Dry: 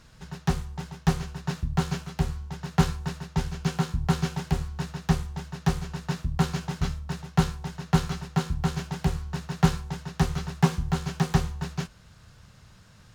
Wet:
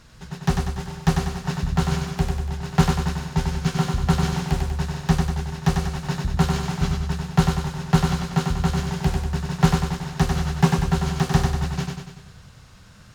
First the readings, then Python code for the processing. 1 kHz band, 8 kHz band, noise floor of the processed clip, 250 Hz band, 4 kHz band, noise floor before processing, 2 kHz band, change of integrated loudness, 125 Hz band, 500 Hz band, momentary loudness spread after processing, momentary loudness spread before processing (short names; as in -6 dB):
+5.5 dB, +5.5 dB, -47 dBFS, +5.0 dB, +5.5 dB, -53 dBFS, +5.5 dB, +5.5 dB, +5.0 dB, +5.5 dB, 7 LU, 9 LU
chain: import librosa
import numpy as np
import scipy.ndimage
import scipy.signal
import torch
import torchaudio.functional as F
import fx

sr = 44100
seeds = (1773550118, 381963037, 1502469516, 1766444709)

y = fx.echo_feedback(x, sr, ms=96, feedback_pct=55, wet_db=-4.0)
y = y * librosa.db_to_amplitude(3.5)